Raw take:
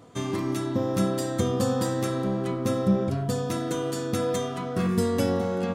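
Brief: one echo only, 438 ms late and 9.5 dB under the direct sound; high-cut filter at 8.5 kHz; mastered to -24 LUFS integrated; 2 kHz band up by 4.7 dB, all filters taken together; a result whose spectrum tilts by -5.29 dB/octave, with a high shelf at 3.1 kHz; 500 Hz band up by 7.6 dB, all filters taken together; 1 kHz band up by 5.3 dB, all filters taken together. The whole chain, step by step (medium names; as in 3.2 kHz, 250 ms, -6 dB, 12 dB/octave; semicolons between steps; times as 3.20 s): low-pass 8.5 kHz; peaking EQ 500 Hz +7.5 dB; peaking EQ 1 kHz +3.5 dB; peaking EQ 2 kHz +6 dB; treble shelf 3.1 kHz -5.5 dB; delay 438 ms -9.5 dB; trim -2 dB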